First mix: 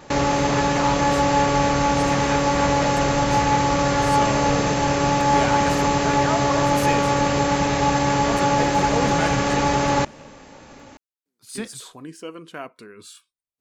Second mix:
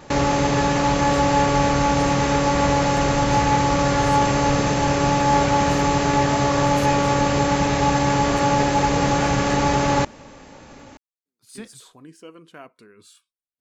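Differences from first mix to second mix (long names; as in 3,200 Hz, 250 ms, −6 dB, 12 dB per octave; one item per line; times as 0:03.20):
speech −7.5 dB
master: add low-shelf EQ 200 Hz +3 dB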